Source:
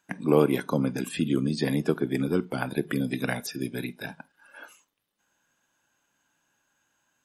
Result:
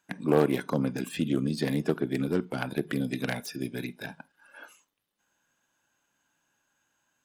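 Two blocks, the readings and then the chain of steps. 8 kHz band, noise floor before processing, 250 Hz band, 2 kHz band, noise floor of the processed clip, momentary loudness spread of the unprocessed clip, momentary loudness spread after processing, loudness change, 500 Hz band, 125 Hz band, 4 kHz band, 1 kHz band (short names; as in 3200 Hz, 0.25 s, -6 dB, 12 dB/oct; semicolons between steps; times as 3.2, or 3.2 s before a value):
-3.5 dB, -76 dBFS, -2.0 dB, -2.0 dB, -77 dBFS, 11 LU, 11 LU, -2.0 dB, -2.0 dB, -2.0 dB, -2.0 dB, -1.5 dB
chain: self-modulated delay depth 0.17 ms; gain -2 dB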